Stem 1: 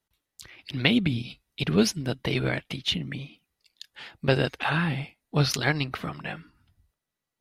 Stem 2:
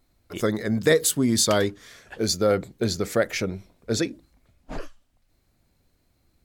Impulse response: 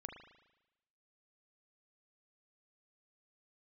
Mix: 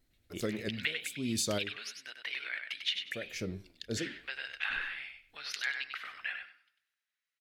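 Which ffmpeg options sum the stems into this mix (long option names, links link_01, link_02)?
-filter_complex "[0:a]lowpass=frequency=3000:poles=1,acompressor=threshold=-32dB:ratio=3,highpass=frequency=1700:width_type=q:width=1.9,volume=-0.5dB,asplit=4[link_01][link_02][link_03][link_04];[link_02]volume=-14dB[link_05];[link_03]volume=-5.5dB[link_06];[1:a]alimiter=limit=-12dB:level=0:latency=1:release=161,flanger=delay=6:depth=8.5:regen=-89:speed=0.92:shape=triangular,volume=-2.5dB,asplit=3[link_07][link_08][link_09];[link_07]atrim=end=1.77,asetpts=PTS-STARTPTS,afade=type=out:start_time=1.766:duration=0.004:curve=hsin[link_10];[link_08]atrim=start=1.77:end=3.11,asetpts=PTS-STARTPTS,volume=0[link_11];[link_09]atrim=start=3.11,asetpts=PTS-STARTPTS,afade=type=in:duration=0.004:curve=hsin[link_12];[link_10][link_11][link_12]concat=n=3:v=0:a=1[link_13];[link_04]apad=whole_len=284343[link_14];[link_13][link_14]sidechaincompress=threshold=-41dB:ratio=8:attack=7:release=477[link_15];[2:a]atrim=start_sample=2205[link_16];[link_05][link_16]afir=irnorm=-1:irlink=0[link_17];[link_06]aecho=0:1:97|194|291:1|0.2|0.04[link_18];[link_01][link_15][link_17][link_18]amix=inputs=4:normalize=0,equalizer=frequency=1000:width_type=o:width=1.2:gain=-8"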